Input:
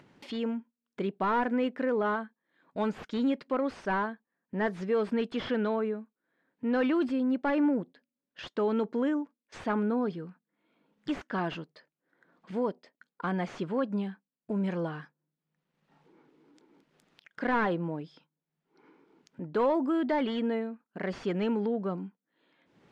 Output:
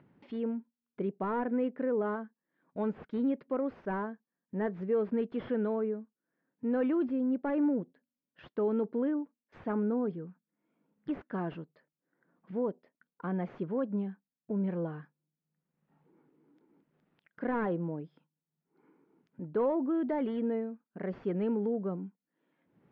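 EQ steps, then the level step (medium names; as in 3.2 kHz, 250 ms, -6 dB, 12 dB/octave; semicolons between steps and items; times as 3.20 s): low-pass 2.1 kHz 12 dB/octave; dynamic bell 460 Hz, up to +5 dB, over -43 dBFS, Q 1.4; peaking EQ 150 Hz +7 dB 2.4 oct; -8.5 dB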